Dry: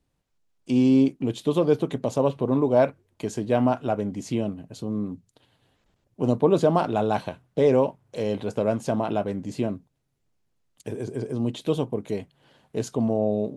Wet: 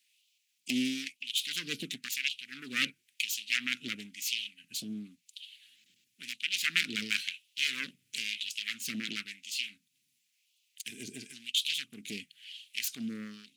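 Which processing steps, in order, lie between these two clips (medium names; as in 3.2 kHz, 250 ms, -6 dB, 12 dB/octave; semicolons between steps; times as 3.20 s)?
self-modulated delay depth 0.6 ms; elliptic band-stop 230–2500 Hz, stop band 80 dB; in parallel at +2 dB: compression, threshold -42 dBFS, peak gain reduction 19 dB; on the sum: LFO high-pass sine 0.97 Hz 560–3100 Hz; trim +5 dB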